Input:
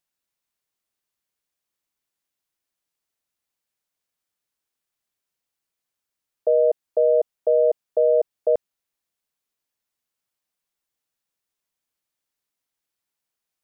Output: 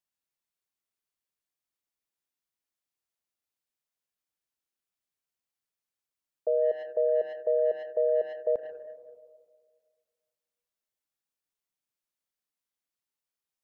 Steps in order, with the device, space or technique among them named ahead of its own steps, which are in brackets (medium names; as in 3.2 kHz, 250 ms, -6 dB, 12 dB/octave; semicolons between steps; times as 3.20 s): saturated reverb return (on a send at -8 dB: reverberation RT60 1.9 s, pre-delay 70 ms + saturation -19.5 dBFS, distortion -10 dB); on the sum: trim -8 dB